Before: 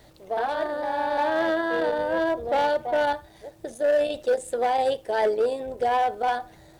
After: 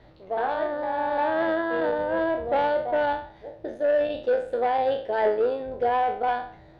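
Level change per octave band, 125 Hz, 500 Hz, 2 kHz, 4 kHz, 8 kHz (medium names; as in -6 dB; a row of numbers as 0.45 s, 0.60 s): no reading, 0.0 dB, -1.5 dB, -5.0 dB, under -20 dB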